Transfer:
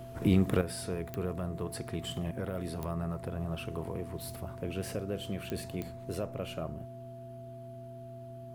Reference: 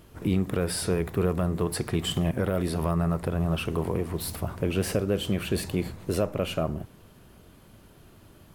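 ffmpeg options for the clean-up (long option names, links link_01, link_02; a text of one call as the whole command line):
ffmpeg -i in.wav -af "adeclick=threshold=4,bandreject=frequency=123:width_type=h:width=4,bandreject=frequency=246:width_type=h:width=4,bandreject=frequency=369:width_type=h:width=4,bandreject=frequency=670:width=30,asetnsamples=nb_out_samples=441:pad=0,asendcmd='0.61 volume volume 10dB',volume=0dB" out.wav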